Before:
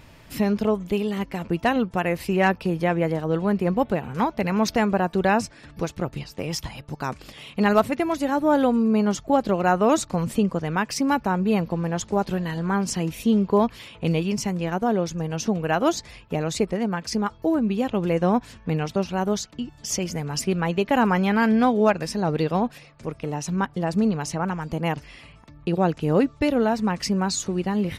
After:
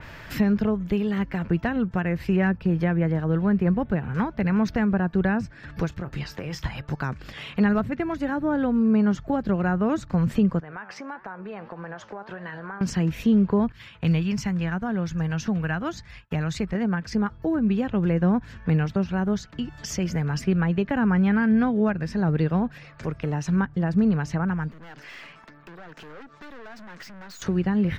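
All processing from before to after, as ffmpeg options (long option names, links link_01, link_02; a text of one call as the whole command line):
ffmpeg -i in.wav -filter_complex "[0:a]asettb=1/sr,asplit=3[link_01][link_02][link_03];[link_01]atrim=end=5.894[link_04];[link_02]atrim=start=5.89:end=6.63,asetpts=PTS-STARTPTS,afade=type=in:duration=0.004:curve=qsin,afade=type=out:start_time=0.736:duration=0.004:curve=qsin,acompressor=threshold=-32dB:ratio=3:attack=3.2:release=140:knee=1:detection=peak,asplit=2[link_05][link_06];[link_06]adelay=28,volume=-13dB[link_07];[link_05][link_07]amix=inputs=2:normalize=0,atrim=end_sample=32634[link_08];[link_03]atrim=start=6.626[link_09];[link_04][link_08]acrossfade=duration=0.004:curve1=hsin:curve2=qsin[link_10];[link_10][link_09]acrossfade=duration=0.004:curve1=qsin:curve2=hsin,asettb=1/sr,asplit=3[link_11][link_12][link_13];[link_11]atrim=end=10.604[link_14];[link_12]atrim=start=10.6:end=12.81,asetpts=PTS-STARTPTS,afade=type=in:duration=0.004:curve=qsin,afade=type=out:start_time=2.206:duration=0.004:curve=qsin,flanger=delay=5.1:depth=5.9:regen=81:speed=1.6:shape=triangular,bandpass=frequency=940:width_type=q:width=0.65,acompressor=threshold=-37dB:ratio=4:attack=3.2:release=140:knee=1:detection=peak[link_15];[link_13]atrim=start=12.806[link_16];[link_14][link_15]acrossfade=duration=0.004:curve1=hsin:curve2=qsin[link_17];[link_17][link_16]acrossfade=duration=0.004:curve1=qsin:curve2=hsin,asettb=1/sr,asplit=3[link_18][link_19][link_20];[link_18]atrim=end=13.724[link_21];[link_19]atrim=start=13.72:end=16.75,asetpts=PTS-STARTPTS,afade=type=in:duration=0.004:curve=qsin,afade=type=out:start_time=3.026:duration=0.004:curve=qsin,agate=range=-33dB:threshold=-40dB:ratio=3:release=100:detection=peak,equalizer=frequency=430:width_type=o:width=1.6:gain=-7.5[link_22];[link_20]atrim=start=16.746[link_23];[link_21][link_22]acrossfade=duration=0.004:curve1=hsin:curve2=qsin[link_24];[link_24][link_23]acrossfade=duration=0.004:curve1=qsin:curve2=hsin,asettb=1/sr,asplit=3[link_25][link_26][link_27];[link_25]atrim=end=24.714[link_28];[link_26]atrim=start=24.71:end=27.42,asetpts=PTS-STARTPTS,afade=type=in:duration=0.004:curve=qsin,afade=type=out:start_time=2.706:duration=0.004:curve=qsin,highpass=frequency=180:width=0.5412,highpass=frequency=180:width=1.3066,acompressor=threshold=-34dB:ratio=16:attack=3.2:release=140:knee=1:detection=peak,aeval=exprs='(tanh(224*val(0)+0.55)-tanh(0.55))/224':channel_layout=same[link_29];[link_27]atrim=start=27.416[link_30];[link_28][link_29]acrossfade=duration=0.004:curve1=hsin:curve2=qsin[link_31];[link_31][link_30]acrossfade=duration=0.004:curve1=qsin:curve2=hsin,equalizer=frequency=250:width_type=o:width=0.67:gain=-4,equalizer=frequency=1600:width_type=o:width=0.67:gain=10,equalizer=frequency=10000:width_type=o:width=0.67:gain=-12,acrossover=split=270[link_32][link_33];[link_33]acompressor=threshold=-42dB:ratio=2.5[link_34];[link_32][link_34]amix=inputs=2:normalize=0,adynamicequalizer=threshold=0.00282:dfrequency=3700:dqfactor=0.7:tfrequency=3700:tqfactor=0.7:attack=5:release=100:ratio=0.375:range=2.5:mode=cutabove:tftype=highshelf,volume=6dB" out.wav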